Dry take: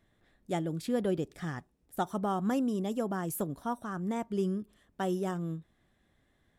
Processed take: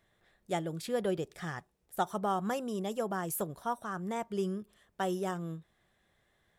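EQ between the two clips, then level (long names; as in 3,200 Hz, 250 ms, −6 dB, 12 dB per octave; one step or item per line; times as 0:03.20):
low-shelf EQ 200 Hz −8 dB
parametric band 270 Hz −13 dB 0.34 octaves
+2.0 dB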